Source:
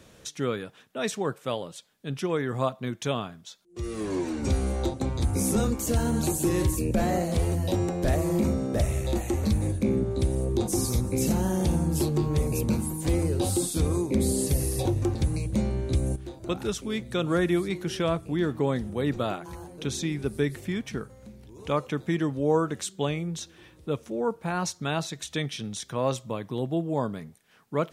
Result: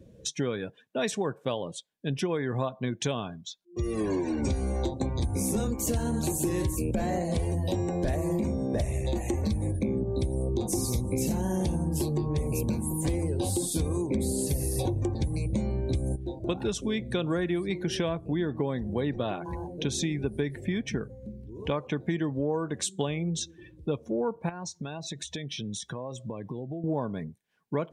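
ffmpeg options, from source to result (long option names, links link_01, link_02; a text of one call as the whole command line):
ffmpeg -i in.wav -filter_complex "[0:a]asettb=1/sr,asplit=3[link_01][link_02][link_03];[link_01]atrim=end=24.494[link_04];[link_02]atrim=start=24.49:end=26.84,asetpts=PTS-STARTPTS,afade=type=in:duration=0.004:curve=qsin,afade=type=out:start_time=2.346:duration=0.004:curve=qsin,acompressor=threshold=-36dB:ratio=20:attack=3.2:release=140:knee=1:detection=peak[link_05];[link_03]atrim=start=26.836[link_06];[link_04][link_05]acrossfade=duration=0.004:curve1=hsin:curve2=qsin[link_07];[link_07][link_06]acrossfade=duration=0.004:curve1=qsin:curve2=hsin,bandreject=frequency=1300:width=6.5,afftdn=noise_reduction=22:noise_floor=-47,acompressor=threshold=-31dB:ratio=6,volume=5.5dB" out.wav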